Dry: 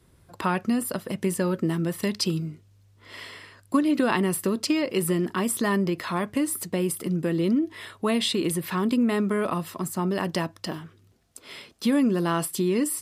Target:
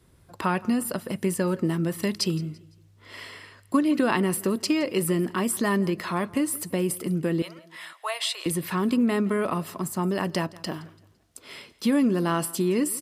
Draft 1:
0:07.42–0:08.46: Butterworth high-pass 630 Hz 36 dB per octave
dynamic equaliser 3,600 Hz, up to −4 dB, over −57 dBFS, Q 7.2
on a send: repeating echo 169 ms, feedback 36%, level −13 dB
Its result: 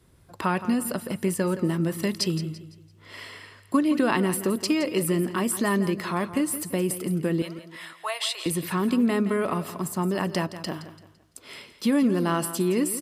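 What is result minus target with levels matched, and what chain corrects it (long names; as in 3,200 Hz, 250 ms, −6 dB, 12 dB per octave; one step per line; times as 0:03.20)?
echo-to-direct +8.5 dB
0:07.42–0:08.46: Butterworth high-pass 630 Hz 36 dB per octave
dynamic equaliser 3,600 Hz, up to −4 dB, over −57 dBFS, Q 7.2
on a send: repeating echo 169 ms, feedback 36%, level −21.5 dB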